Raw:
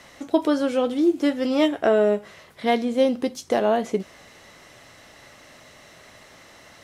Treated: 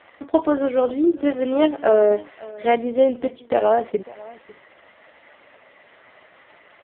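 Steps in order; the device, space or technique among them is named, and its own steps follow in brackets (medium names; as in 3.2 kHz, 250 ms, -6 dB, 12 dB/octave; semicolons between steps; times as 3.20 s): high-pass 48 Hz 12 dB/octave; dynamic bell 140 Hz, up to -5 dB, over -43 dBFS, Q 1.6; satellite phone (band-pass 310–3100 Hz; delay 550 ms -21 dB; trim +4.5 dB; AMR-NB 4.75 kbps 8 kHz)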